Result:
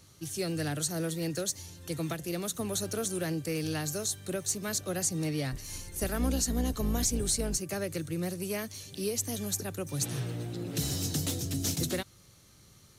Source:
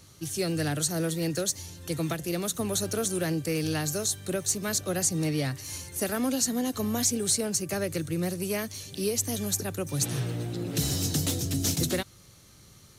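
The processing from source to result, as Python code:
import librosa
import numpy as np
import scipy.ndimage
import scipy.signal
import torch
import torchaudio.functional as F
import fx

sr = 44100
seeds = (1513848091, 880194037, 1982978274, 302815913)

y = fx.octave_divider(x, sr, octaves=2, level_db=3.0, at=(5.52, 7.58))
y = y * librosa.db_to_amplitude(-4.0)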